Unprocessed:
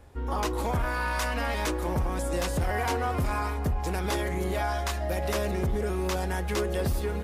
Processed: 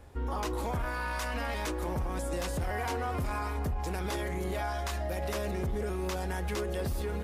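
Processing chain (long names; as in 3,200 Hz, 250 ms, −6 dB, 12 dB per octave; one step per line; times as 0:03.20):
brickwall limiter −26 dBFS, peak gain reduction 6 dB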